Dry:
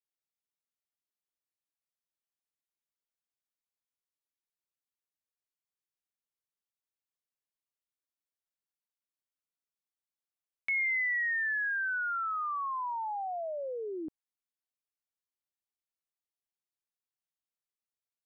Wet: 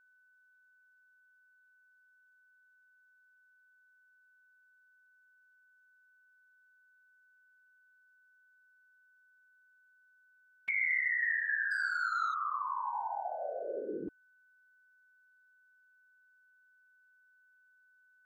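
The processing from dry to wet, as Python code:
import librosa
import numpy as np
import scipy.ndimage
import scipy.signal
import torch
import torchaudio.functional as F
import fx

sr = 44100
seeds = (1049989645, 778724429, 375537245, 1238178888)

y = fx.leveller(x, sr, passes=1, at=(11.71, 12.34))
y = fx.whisperise(y, sr, seeds[0])
y = y + 10.0 ** (-63.0 / 20.0) * np.sin(2.0 * np.pi * 1500.0 * np.arange(len(y)) / sr)
y = y * librosa.db_to_amplitude(-1.5)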